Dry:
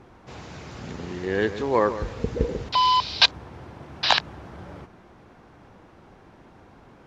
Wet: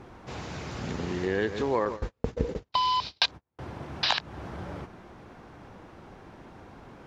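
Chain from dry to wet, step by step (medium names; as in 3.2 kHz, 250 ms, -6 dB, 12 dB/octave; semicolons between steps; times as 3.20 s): 1.85–3.59 s: gate -27 dBFS, range -44 dB; compression 3:1, threshold -28 dBFS, peak gain reduction 13 dB; trim +2.5 dB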